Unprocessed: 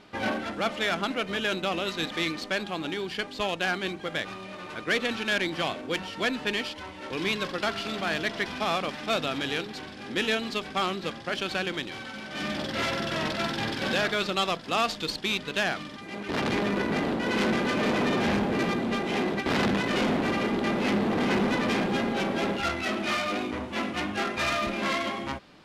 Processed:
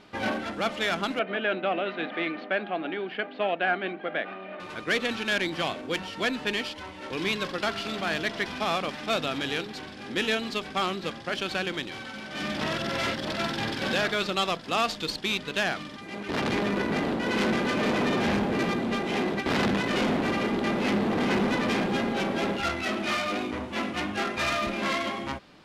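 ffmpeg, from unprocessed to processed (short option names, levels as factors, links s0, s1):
-filter_complex "[0:a]asettb=1/sr,asplit=3[s0][s1][s2];[s0]atrim=end=1.194[s3];[s1]atrim=start=1.19:end=4.6,asetpts=PTS-STARTPTS,afade=t=in:d=0.004:c=qsin,afade=t=out:st=3.406:d=0.004:c=qsin,highpass=f=200:w=0.5412,highpass=f=200:w=1.3066,equalizer=f=680:t=q:w=4:g=9,equalizer=f=990:t=q:w=4:g=-5,equalizer=f=1500:t=q:w=4:g=3,lowpass=f=2800:w=0.5412,lowpass=f=2800:w=1.3066[s4];[s2]atrim=start=4.596[s5];[s3][s4]acrossfade=d=0.004:c1=hsin:c2=qsin[s6];[s6][s5]acrossfade=d=0.004:c1=qsin:c2=hsin,asplit=3[s7][s8][s9];[s7]atrim=end=12.612[s10];[s8]atrim=start=12.608:end=13.282,asetpts=PTS-STARTPTS,areverse[s11];[s9]atrim=start=13.278[s12];[s10][s11]acrossfade=d=0.004:c1=hsin:c2=hsin[s13];[s13][s12]acrossfade=d=0.004:c1=hsin:c2=hsin"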